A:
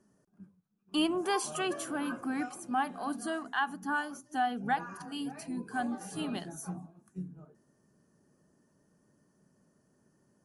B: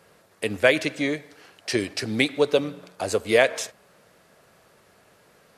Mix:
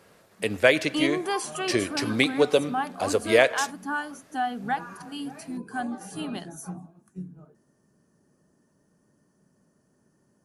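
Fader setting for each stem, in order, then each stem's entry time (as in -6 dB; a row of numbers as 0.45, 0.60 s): +2.5, -0.5 dB; 0.00, 0.00 s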